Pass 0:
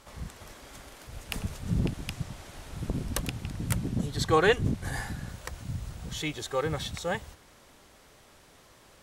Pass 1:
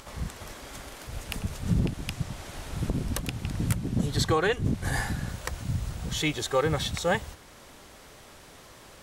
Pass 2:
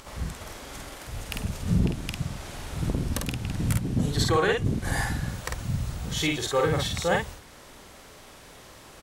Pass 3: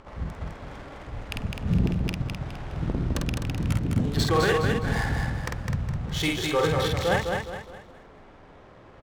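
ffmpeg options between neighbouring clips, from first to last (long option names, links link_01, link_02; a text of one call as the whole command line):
ffmpeg -i in.wav -af "alimiter=limit=-19.5dB:level=0:latency=1:release=426,acompressor=mode=upward:threshold=-51dB:ratio=2.5,volume=5.5dB" out.wav
ffmpeg -i in.wav -filter_complex "[0:a]asplit=2[link_01][link_02];[link_02]adelay=49,volume=-3dB[link_03];[link_01][link_03]amix=inputs=2:normalize=0" out.wav
ffmpeg -i in.wav -af "adynamicsmooth=sensitivity=7.5:basefreq=1200,aecho=1:1:207|414|621|828|1035:0.596|0.226|0.086|0.0327|0.0124" out.wav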